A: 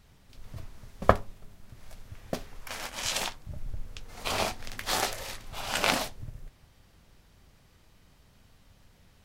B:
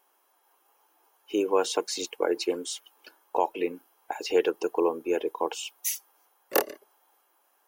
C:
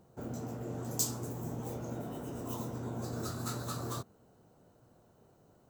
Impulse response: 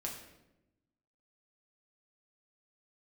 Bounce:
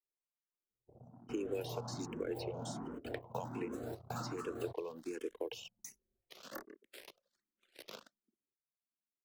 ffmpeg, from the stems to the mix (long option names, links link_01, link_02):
-filter_complex "[0:a]aeval=exprs='abs(val(0))':channel_layout=same,highpass=frequency=260:width=0.5412,highpass=frequency=260:width=1.3066,adelay=2050,volume=-11dB[link_01];[1:a]adynamicequalizer=threshold=0.00708:dfrequency=3300:dqfactor=0.7:tfrequency=3300:tqfactor=0.7:attack=5:release=100:ratio=0.375:range=2.5:mode=boostabove:tftype=highshelf,volume=0dB,asplit=2[link_02][link_03];[2:a]adynamicequalizer=threshold=0.002:dfrequency=870:dqfactor=0.91:tfrequency=870:tqfactor=0.91:attack=5:release=100:ratio=0.375:range=2.5:mode=boostabove:tftype=bell,adelay=700,volume=-1dB[link_04];[link_03]apad=whole_len=281928[link_05];[link_04][link_05]sidechaingate=range=-12dB:threshold=-56dB:ratio=16:detection=peak[link_06];[link_01][link_02]amix=inputs=2:normalize=0,equalizer=frequency=820:width_type=o:width=0.82:gain=-12.5,acompressor=threshold=-30dB:ratio=4,volume=0dB[link_07];[link_06][link_07]amix=inputs=2:normalize=0,acrossover=split=120|1900[link_08][link_09][link_10];[link_08]acompressor=threshold=-52dB:ratio=4[link_11];[link_09]acompressor=threshold=-34dB:ratio=4[link_12];[link_10]acompressor=threshold=-50dB:ratio=4[link_13];[link_11][link_12][link_13]amix=inputs=3:normalize=0,anlmdn=0.01,asplit=2[link_14][link_15];[link_15]afreqshift=1.3[link_16];[link_14][link_16]amix=inputs=2:normalize=1"